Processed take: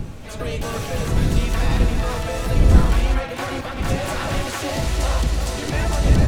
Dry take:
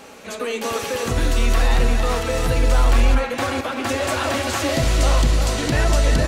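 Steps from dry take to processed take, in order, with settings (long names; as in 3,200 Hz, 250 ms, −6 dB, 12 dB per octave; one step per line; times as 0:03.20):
wind on the microphone 120 Hz −18 dBFS
pitch-shifted copies added +5 semitones −6 dB
level −5 dB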